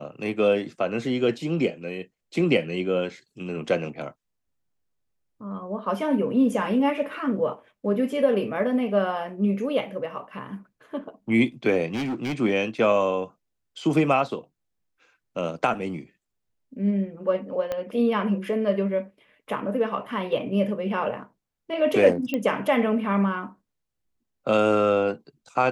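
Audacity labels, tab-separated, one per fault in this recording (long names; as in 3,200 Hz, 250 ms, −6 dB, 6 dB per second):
11.940000	12.340000	clipping −25 dBFS
17.720000	17.720000	click −16 dBFS
22.340000	22.340000	click −14 dBFS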